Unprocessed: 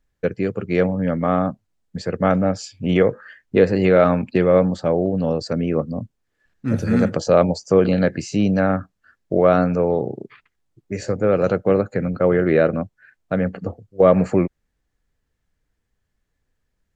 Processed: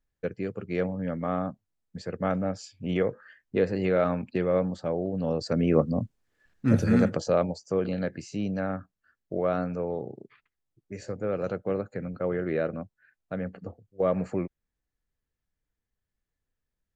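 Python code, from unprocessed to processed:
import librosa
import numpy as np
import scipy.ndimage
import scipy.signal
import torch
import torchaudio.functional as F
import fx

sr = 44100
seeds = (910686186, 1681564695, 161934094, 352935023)

y = fx.gain(x, sr, db=fx.line((5.08, -10.0), (5.77, -0.5), (6.72, -0.5), (7.56, -12.0)))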